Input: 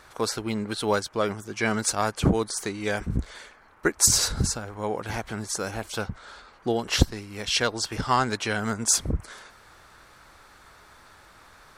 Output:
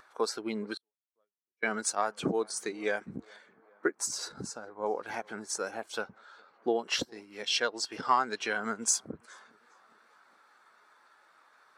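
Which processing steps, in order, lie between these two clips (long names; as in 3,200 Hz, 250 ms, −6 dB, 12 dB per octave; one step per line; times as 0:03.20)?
gain on one half-wave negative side −3 dB
low-shelf EQ 380 Hz −6 dB
tape delay 409 ms, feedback 61%, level −21 dB, low-pass 3,400 Hz
downward compressor 2 to 1, threshold −28 dBFS, peak gain reduction 7.5 dB
0:00.77–0:01.63: gate with flip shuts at −33 dBFS, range −41 dB
0:03.36–0:04.86: high-shelf EQ 2,300 Hz −6 dB
noise gate with hold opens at −51 dBFS
upward compression, threshold −45 dBFS
high-pass filter 220 Hz 12 dB per octave
every bin expanded away from the loudest bin 1.5 to 1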